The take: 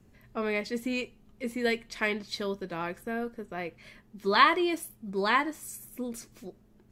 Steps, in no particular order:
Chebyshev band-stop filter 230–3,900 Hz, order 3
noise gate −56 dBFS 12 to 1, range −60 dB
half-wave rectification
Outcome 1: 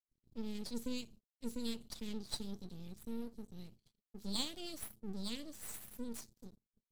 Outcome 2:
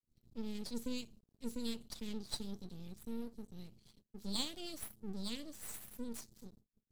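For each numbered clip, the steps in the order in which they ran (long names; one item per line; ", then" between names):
Chebyshev band-stop filter, then half-wave rectification, then noise gate
Chebyshev band-stop filter, then noise gate, then half-wave rectification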